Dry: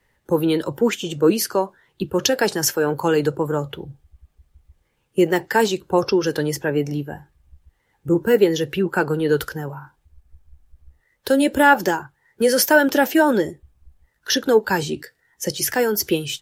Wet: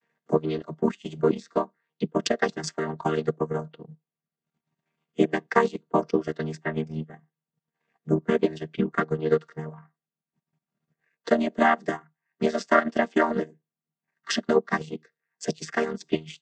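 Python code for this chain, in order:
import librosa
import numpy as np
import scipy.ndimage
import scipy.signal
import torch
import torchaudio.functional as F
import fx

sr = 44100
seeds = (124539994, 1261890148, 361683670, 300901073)

y = fx.chord_vocoder(x, sr, chord='major triad', root=51)
y = fx.peak_eq(y, sr, hz=240.0, db=-11.0, octaves=3.0)
y = fx.transient(y, sr, attack_db=7, sustain_db=-11)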